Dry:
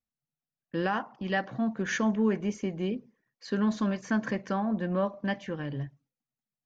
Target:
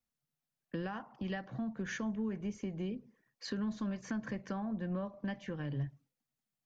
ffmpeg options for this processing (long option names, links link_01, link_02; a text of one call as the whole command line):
ffmpeg -i in.wav -filter_complex "[0:a]acrossover=split=130[link_01][link_02];[link_02]acompressor=threshold=-41dB:ratio=6[link_03];[link_01][link_03]amix=inputs=2:normalize=0,volume=2dB" out.wav